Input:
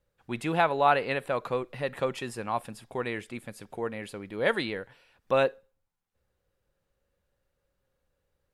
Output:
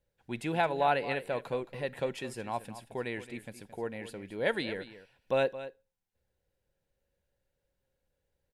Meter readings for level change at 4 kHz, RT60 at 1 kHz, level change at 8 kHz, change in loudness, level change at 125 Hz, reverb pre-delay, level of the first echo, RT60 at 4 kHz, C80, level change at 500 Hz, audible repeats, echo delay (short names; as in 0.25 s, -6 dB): -3.5 dB, none, -3.5 dB, -4.0 dB, -3.5 dB, none, -14.0 dB, none, none, -3.5 dB, 1, 0.22 s